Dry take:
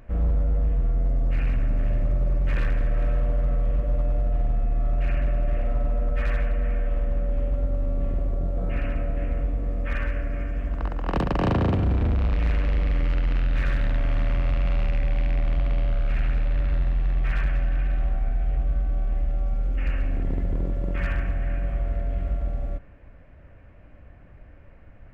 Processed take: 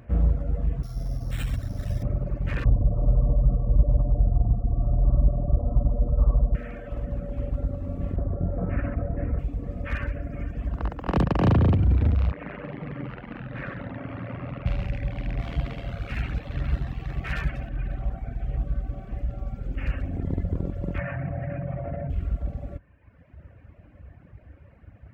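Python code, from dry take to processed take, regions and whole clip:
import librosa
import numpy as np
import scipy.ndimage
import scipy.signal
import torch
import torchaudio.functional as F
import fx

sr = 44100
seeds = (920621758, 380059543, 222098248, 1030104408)

y = fx.chain(x, sr, fx.peak_eq(hz=310.0, db=-7.0, octaves=2.7),
    fx.resample_bad(factor=8, down='none', up='hold'),
    fx.env_flatten(amount_pct=100), at=(0.83, 2.03))
y = fx.chain(y, sr, fx.steep_lowpass(hz=1200.0, slope=96),
    fx.low_shelf(hz=130.0, db=10.0), at=(2.64, 6.55))
y = fx.chain(y, sr, fx.lowpass(hz=1900.0, slope=24),
    fx.env_flatten(amount_pct=70), at=(8.16, 9.39))
y = fx.chain(y, sr, fx.bandpass_edges(low_hz=180.0, high_hz=2100.0),
    fx.echo_wet_lowpass(ms=95, feedback_pct=77, hz=1500.0, wet_db=-8.5), at=(12.31, 14.66))
y = fx.chain(y, sr, fx.high_shelf(hz=2300.0, db=6.5),
    fx.doubler(ms=13.0, db=-7.0), at=(15.39, 17.69))
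y = fx.chain(y, sr, fx.cabinet(low_hz=140.0, low_slope=12, high_hz=2200.0, hz=(140.0, 210.0, 410.0, 600.0, 1100.0, 1500.0), db=(10, -9, -10, 6, -3, -4)),
    fx.env_flatten(amount_pct=100), at=(20.98, 22.1))
y = scipy.signal.sosfilt(scipy.signal.butter(4, 61.0, 'highpass', fs=sr, output='sos'), y)
y = fx.dereverb_blind(y, sr, rt60_s=1.3)
y = fx.low_shelf(y, sr, hz=220.0, db=8.5)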